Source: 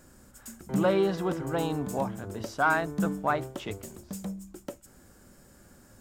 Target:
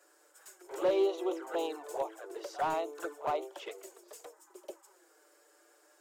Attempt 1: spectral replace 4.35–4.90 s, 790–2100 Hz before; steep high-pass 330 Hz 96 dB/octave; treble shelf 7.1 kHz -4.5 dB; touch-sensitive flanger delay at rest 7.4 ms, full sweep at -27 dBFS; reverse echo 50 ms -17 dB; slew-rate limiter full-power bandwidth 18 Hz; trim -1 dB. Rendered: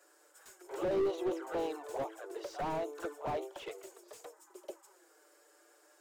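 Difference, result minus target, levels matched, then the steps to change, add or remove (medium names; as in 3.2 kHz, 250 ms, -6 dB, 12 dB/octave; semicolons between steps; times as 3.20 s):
slew-rate limiter: distortion +14 dB
change: slew-rate limiter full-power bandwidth 46.5 Hz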